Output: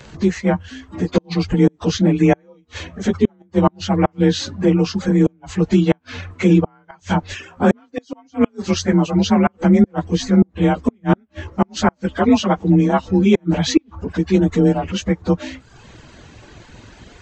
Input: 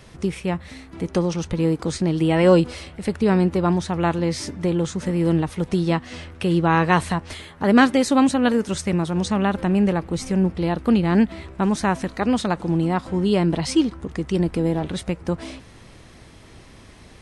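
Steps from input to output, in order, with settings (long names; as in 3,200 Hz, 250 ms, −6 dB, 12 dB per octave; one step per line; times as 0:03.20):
partials spread apart or drawn together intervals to 91%
gate with flip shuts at −11 dBFS, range −32 dB
reverb reduction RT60 0.8 s
level +9 dB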